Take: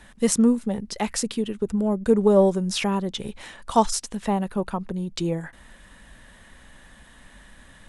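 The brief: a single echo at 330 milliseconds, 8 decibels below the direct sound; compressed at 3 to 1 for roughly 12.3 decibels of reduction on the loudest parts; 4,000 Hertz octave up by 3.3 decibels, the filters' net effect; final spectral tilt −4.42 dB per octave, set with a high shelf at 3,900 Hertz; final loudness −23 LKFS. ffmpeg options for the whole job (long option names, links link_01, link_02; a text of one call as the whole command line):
ffmpeg -i in.wav -af "highshelf=frequency=3900:gain=-4,equalizer=frequency=4000:width_type=o:gain=7,acompressor=threshold=-30dB:ratio=3,aecho=1:1:330:0.398,volume=9dB" out.wav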